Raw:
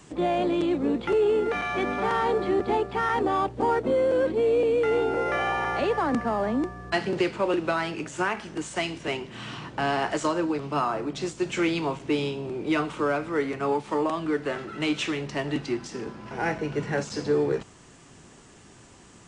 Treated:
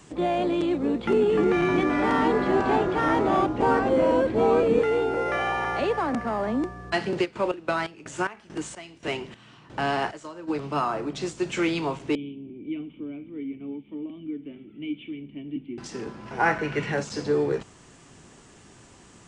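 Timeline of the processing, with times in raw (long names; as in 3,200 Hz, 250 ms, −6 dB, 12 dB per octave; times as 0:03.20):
0:00.81–0:04.83: delay with pitch and tempo change per echo 251 ms, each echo −3 semitones, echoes 3
0:05.92–0:06.48: saturating transformer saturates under 450 Hz
0:07.24–0:10.47: square-wave tremolo 3.4 Hz → 0.97 Hz
0:12.15–0:15.78: formant resonators in series i
0:16.39–0:16.91: parametric band 1,000 Hz → 2,800 Hz +11 dB 1.2 octaves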